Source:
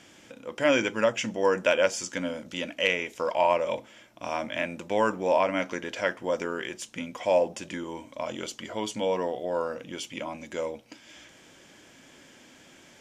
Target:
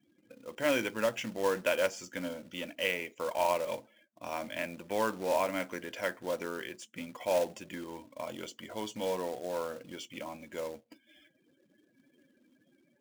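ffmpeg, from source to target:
ffmpeg -i in.wav -filter_complex "[0:a]afftdn=noise_reduction=36:noise_floor=-47,acrossover=split=490|4400[link_01][link_02][link_03];[link_03]alimiter=level_in=8.5dB:limit=-24dB:level=0:latency=1:release=444,volume=-8.5dB[link_04];[link_01][link_02][link_04]amix=inputs=3:normalize=0,acrusher=bits=3:mode=log:mix=0:aa=0.000001,volume=-6.5dB" out.wav

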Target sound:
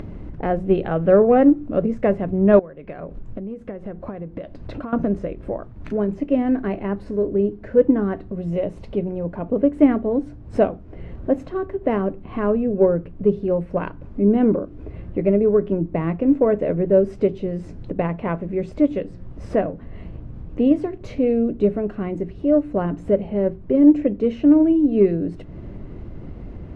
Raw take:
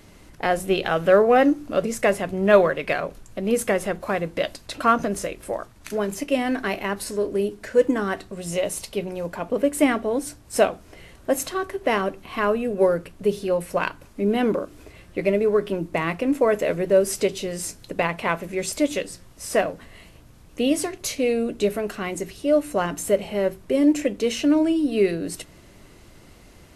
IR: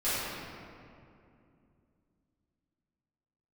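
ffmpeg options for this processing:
-filter_complex "[0:a]aeval=exprs='0.75*(cos(1*acos(clip(val(0)/0.75,-1,1)))-cos(1*PI/2))+0.015*(cos(7*acos(clip(val(0)/0.75,-1,1)))-cos(7*PI/2))':channel_layout=same,tiltshelf=frequency=650:gain=10,asettb=1/sr,asplit=3[link_01][link_02][link_03];[link_01]atrim=end=2.594[link_04];[link_02]atrim=start=2.59:end=4.93,asetpts=PTS-STARTPTS,afade=type=in:duration=0.004:curve=qsin,afade=type=out:start_time=2.336:duration=0.004:curve=qsin,acompressor=threshold=-32dB:ratio=16[link_05];[link_03]atrim=start=4.926[link_06];[link_04][link_05]acrossfade=duration=0.004:curve1=hsin:curve2=qsin[link_07];[link_07][link_06]acrossfade=duration=0.004:curve1=qsin:curve2=hsin,lowpass=2400,acompressor=mode=upward:threshold=-24dB:ratio=2.5"

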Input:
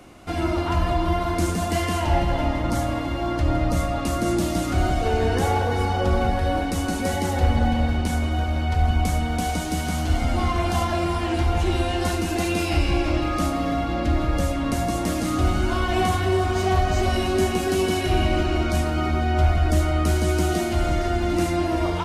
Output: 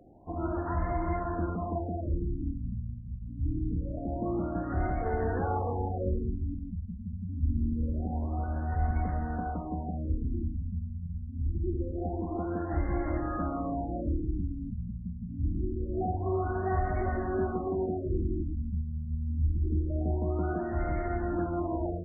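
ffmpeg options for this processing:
ffmpeg -i in.wav -af "acrusher=bits=7:mix=0:aa=0.000001,afftfilt=real='re*lt(b*sr/1024,230*pow(2200/230,0.5+0.5*sin(2*PI*0.25*pts/sr)))':imag='im*lt(b*sr/1024,230*pow(2200/230,0.5+0.5*sin(2*PI*0.25*pts/sr)))':win_size=1024:overlap=0.75,volume=-8.5dB" out.wav

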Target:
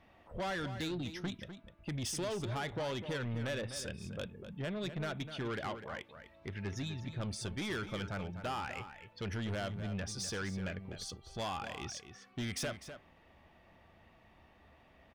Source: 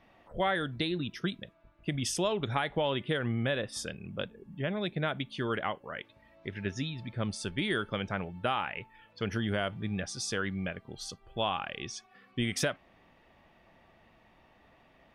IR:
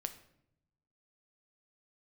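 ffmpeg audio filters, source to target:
-filter_complex "[0:a]equalizer=frequency=75:width_type=o:width=0.62:gain=9,asoftclip=type=tanh:threshold=-31.5dB,asplit=2[link_01][link_02];[link_02]adelay=250.7,volume=-10dB,highshelf=frequency=4000:gain=-5.64[link_03];[link_01][link_03]amix=inputs=2:normalize=0,volume=-2dB"

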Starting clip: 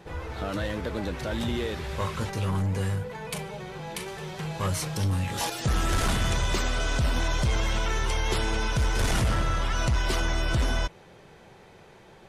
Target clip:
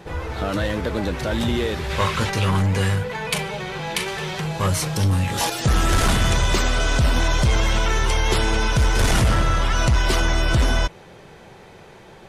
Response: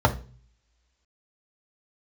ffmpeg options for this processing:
-filter_complex "[0:a]asettb=1/sr,asplit=3[link_01][link_02][link_03];[link_01]atrim=end=1.904[link_04];[link_02]atrim=start=1.9:end=4.4,asetpts=PTS-STARTPTS,afade=type=in:duration=0.004:curve=qsin,afade=type=out:start_time=2.496:duration=0.004:curve=qsin,equalizer=frequency=2700:width_type=o:width=2.6:gain=6.5[link_05];[link_03]atrim=start=4.396[link_06];[link_04][link_05]acrossfade=duration=0.004:curve1=hsin:curve2=qsin[link_07];[link_07][link_06]acrossfade=duration=0.004:curve1=qsin:curve2=hsin,volume=7dB"

